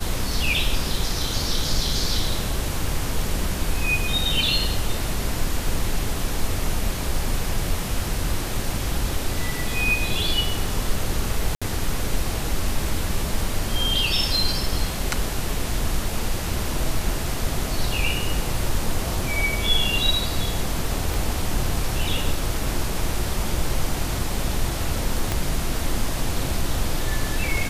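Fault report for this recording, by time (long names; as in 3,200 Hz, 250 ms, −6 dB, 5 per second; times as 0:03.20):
0:11.55–0:11.62: drop-out 66 ms
0:21.14: click
0:25.32: click −8 dBFS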